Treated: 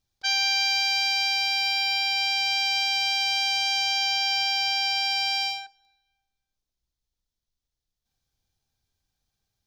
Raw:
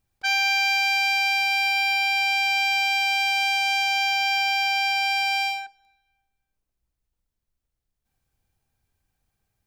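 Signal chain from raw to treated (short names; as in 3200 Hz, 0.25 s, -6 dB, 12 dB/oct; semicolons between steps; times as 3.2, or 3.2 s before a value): band shelf 4600 Hz +9.5 dB 1.2 oct; gain -5.5 dB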